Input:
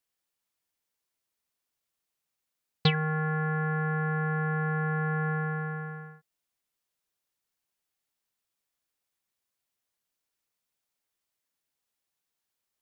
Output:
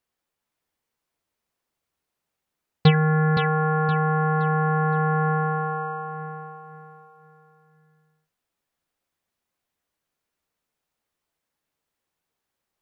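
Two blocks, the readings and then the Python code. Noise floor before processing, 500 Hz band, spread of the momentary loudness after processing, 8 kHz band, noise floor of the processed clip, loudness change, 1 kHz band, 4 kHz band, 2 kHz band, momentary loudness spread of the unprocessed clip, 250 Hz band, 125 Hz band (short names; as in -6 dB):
-85 dBFS, +9.0 dB, 14 LU, n/a, -84 dBFS, +7.0 dB, +10.0 dB, +2.0 dB, +3.5 dB, 9 LU, +7.5 dB, +7.5 dB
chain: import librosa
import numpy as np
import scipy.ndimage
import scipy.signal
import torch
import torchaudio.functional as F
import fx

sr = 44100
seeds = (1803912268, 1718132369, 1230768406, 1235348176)

y = fx.high_shelf(x, sr, hz=2400.0, db=-10.5)
y = fx.doubler(y, sr, ms=13.0, db=-10.0)
y = fx.echo_feedback(y, sr, ms=518, feedback_pct=34, wet_db=-6.0)
y = y * 10.0 ** (7.5 / 20.0)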